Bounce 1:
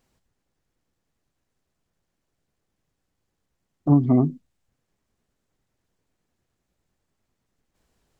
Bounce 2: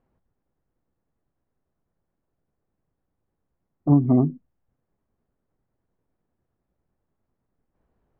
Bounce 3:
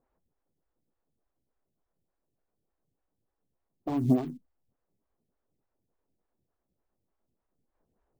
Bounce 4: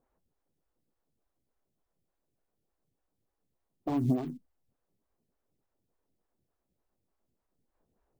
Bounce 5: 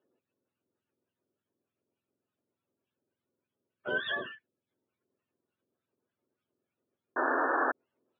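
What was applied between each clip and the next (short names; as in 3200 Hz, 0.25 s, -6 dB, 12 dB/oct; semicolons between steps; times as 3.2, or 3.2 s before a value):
LPF 1200 Hz 12 dB/oct
in parallel at -6 dB: short-mantissa float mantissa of 2-bit; on the sum: limiter -8 dBFS, peak gain reduction 3.5 dB; photocell phaser 3.4 Hz; gain -5.5 dB
compressor, threshold -23 dBFS, peak gain reduction 6 dB
spectrum mirrored in octaves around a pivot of 660 Hz; speaker cabinet 190–3100 Hz, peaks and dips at 250 Hz +7 dB, 370 Hz +10 dB, 520 Hz +3 dB, 790 Hz -7 dB, 1100 Hz -4 dB, 2000 Hz -9 dB; painted sound noise, 7.16–7.72, 250–1800 Hz -31 dBFS; gain +2.5 dB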